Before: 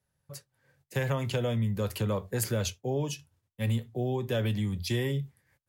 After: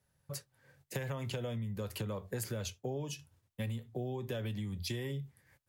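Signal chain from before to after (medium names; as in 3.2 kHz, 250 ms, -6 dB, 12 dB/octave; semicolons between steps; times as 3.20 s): compression 6:1, threshold -39 dBFS, peak gain reduction 14 dB; trim +3 dB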